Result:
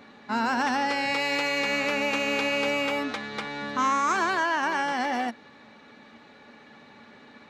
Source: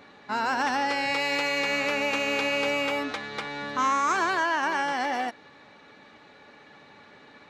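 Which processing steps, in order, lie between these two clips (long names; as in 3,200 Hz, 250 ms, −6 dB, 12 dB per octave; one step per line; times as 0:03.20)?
parametric band 230 Hz +10.5 dB 0.24 octaves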